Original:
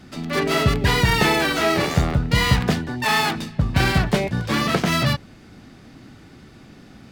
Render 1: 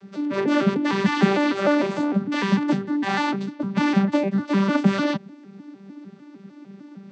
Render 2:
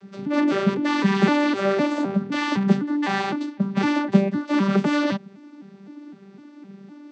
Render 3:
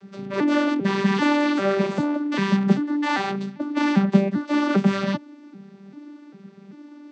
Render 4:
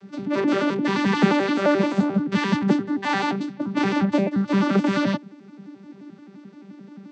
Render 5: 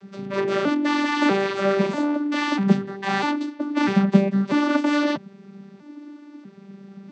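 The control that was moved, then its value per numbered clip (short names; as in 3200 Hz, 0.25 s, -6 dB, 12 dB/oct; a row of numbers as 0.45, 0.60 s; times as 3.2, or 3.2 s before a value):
arpeggiated vocoder, a note every: 151, 255, 395, 87, 644 ms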